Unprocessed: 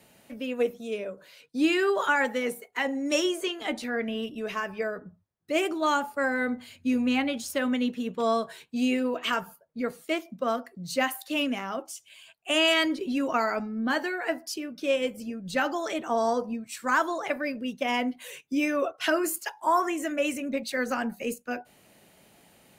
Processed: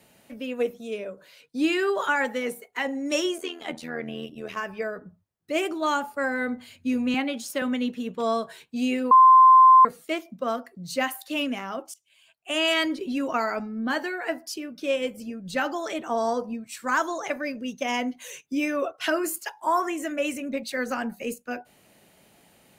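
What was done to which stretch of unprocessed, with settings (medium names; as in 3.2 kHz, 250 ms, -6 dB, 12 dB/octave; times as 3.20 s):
3.38–4.57 s: AM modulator 82 Hz, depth 60%
7.14–7.62 s: high-pass 160 Hz 24 dB/octave
9.11–9.85 s: bleep 1.04 kHz -9.5 dBFS
11.94–12.76 s: fade in, from -20.5 dB
16.97–18.46 s: peaking EQ 6.3 kHz +13 dB 0.23 oct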